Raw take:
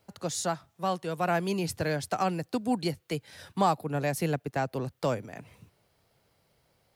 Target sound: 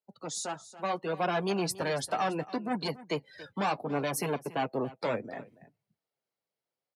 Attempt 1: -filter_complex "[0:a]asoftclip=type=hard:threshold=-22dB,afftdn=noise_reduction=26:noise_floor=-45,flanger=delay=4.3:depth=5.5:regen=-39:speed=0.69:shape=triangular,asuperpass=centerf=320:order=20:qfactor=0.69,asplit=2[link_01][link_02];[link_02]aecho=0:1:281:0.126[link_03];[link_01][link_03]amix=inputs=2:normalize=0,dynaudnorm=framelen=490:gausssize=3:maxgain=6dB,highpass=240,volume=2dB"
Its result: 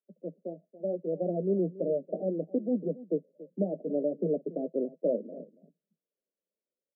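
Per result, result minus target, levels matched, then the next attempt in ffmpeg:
hard clipping: distortion −8 dB; 250 Hz band +2.5 dB
-filter_complex "[0:a]asoftclip=type=hard:threshold=-29.5dB,afftdn=noise_reduction=26:noise_floor=-45,flanger=delay=4.3:depth=5.5:regen=-39:speed=0.69:shape=triangular,asuperpass=centerf=320:order=20:qfactor=0.69,asplit=2[link_01][link_02];[link_02]aecho=0:1:281:0.126[link_03];[link_01][link_03]amix=inputs=2:normalize=0,dynaudnorm=framelen=490:gausssize=3:maxgain=6dB,highpass=240,volume=2dB"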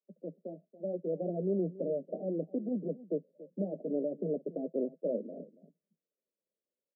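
250 Hz band +3.0 dB
-filter_complex "[0:a]asoftclip=type=hard:threshold=-29.5dB,afftdn=noise_reduction=26:noise_floor=-45,flanger=delay=4.3:depth=5.5:regen=-39:speed=0.69:shape=triangular,asplit=2[link_01][link_02];[link_02]aecho=0:1:281:0.126[link_03];[link_01][link_03]amix=inputs=2:normalize=0,dynaudnorm=framelen=490:gausssize=3:maxgain=6dB,highpass=240,volume=2dB"

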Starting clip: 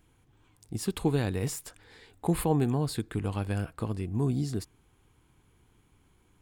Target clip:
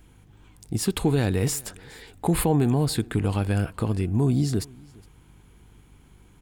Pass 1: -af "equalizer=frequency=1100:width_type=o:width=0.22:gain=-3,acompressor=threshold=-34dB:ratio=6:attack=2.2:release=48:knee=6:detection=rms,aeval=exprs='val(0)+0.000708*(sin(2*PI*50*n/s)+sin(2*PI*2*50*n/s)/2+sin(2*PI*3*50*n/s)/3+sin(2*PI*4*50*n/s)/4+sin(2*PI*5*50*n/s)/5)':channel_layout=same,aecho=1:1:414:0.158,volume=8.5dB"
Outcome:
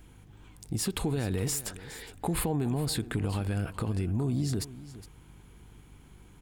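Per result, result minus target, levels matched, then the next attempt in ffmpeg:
downward compressor: peak gain reduction +9 dB; echo-to-direct +9 dB
-af "equalizer=frequency=1100:width_type=o:width=0.22:gain=-3,acompressor=threshold=-23dB:ratio=6:attack=2.2:release=48:knee=6:detection=rms,aeval=exprs='val(0)+0.000708*(sin(2*PI*50*n/s)+sin(2*PI*2*50*n/s)/2+sin(2*PI*3*50*n/s)/3+sin(2*PI*4*50*n/s)/4+sin(2*PI*5*50*n/s)/5)':channel_layout=same,aecho=1:1:414:0.158,volume=8.5dB"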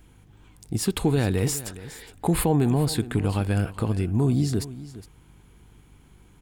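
echo-to-direct +9 dB
-af "equalizer=frequency=1100:width_type=o:width=0.22:gain=-3,acompressor=threshold=-23dB:ratio=6:attack=2.2:release=48:knee=6:detection=rms,aeval=exprs='val(0)+0.000708*(sin(2*PI*50*n/s)+sin(2*PI*2*50*n/s)/2+sin(2*PI*3*50*n/s)/3+sin(2*PI*4*50*n/s)/4+sin(2*PI*5*50*n/s)/5)':channel_layout=same,aecho=1:1:414:0.0562,volume=8.5dB"

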